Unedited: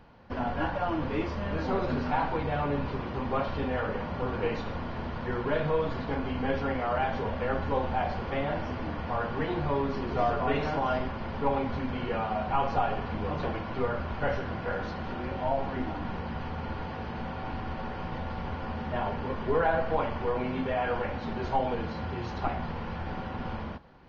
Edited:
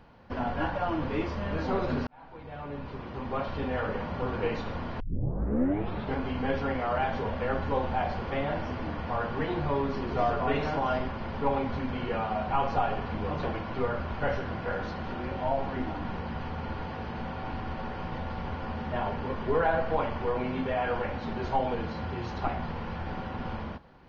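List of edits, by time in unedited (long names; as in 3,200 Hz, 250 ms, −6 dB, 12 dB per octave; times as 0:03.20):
0:02.07–0:03.85: fade in linear
0:05.00: tape start 1.17 s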